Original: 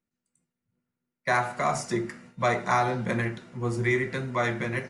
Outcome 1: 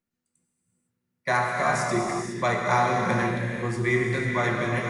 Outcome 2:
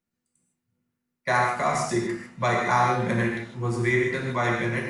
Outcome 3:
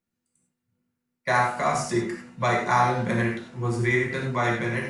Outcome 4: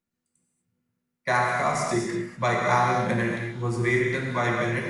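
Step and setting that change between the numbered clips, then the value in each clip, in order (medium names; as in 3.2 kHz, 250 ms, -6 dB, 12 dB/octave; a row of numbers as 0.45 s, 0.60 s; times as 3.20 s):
gated-style reverb, gate: 530 ms, 180 ms, 120 ms, 270 ms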